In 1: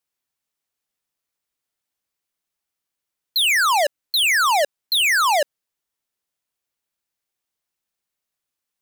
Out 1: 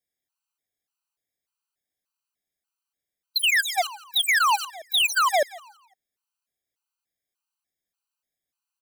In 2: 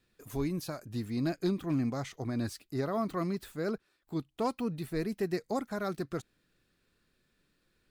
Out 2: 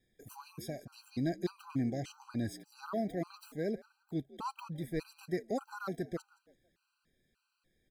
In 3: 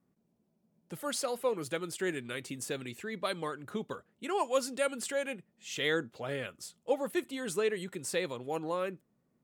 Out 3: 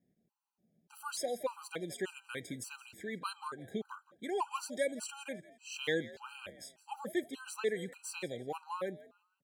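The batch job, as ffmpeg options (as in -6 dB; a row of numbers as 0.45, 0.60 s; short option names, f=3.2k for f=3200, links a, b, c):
-filter_complex "[0:a]asplit=2[a][b];[b]asplit=3[c][d][e];[c]adelay=169,afreqshift=62,volume=-19dB[f];[d]adelay=338,afreqshift=124,volume=-29.2dB[g];[e]adelay=507,afreqshift=186,volume=-39.3dB[h];[f][g][h]amix=inputs=3:normalize=0[i];[a][i]amix=inputs=2:normalize=0,afftfilt=real='re*gt(sin(2*PI*1.7*pts/sr)*(1-2*mod(floor(b*sr/1024/790),2)),0)':imag='im*gt(sin(2*PI*1.7*pts/sr)*(1-2*mod(floor(b*sr/1024/790),2)),0)':win_size=1024:overlap=0.75,volume=-1.5dB"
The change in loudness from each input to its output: -4.5, -4.5, -5.0 LU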